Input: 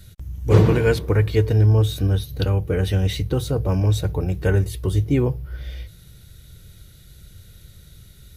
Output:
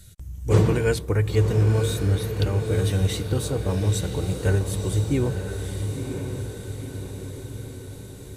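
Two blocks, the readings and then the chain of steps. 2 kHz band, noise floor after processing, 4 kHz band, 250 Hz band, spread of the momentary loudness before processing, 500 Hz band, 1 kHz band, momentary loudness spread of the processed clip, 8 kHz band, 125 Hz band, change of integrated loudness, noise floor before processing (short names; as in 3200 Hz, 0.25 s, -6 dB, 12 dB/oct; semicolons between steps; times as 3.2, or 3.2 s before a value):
-2.5 dB, -40 dBFS, -1.5 dB, -3.0 dB, 15 LU, -2.5 dB, -2.5 dB, 15 LU, +5.0 dB, -3.0 dB, -4.0 dB, -48 dBFS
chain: bell 8200 Hz +11 dB 0.76 oct; diffused feedback echo 0.981 s, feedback 59%, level -6.5 dB; gain -4 dB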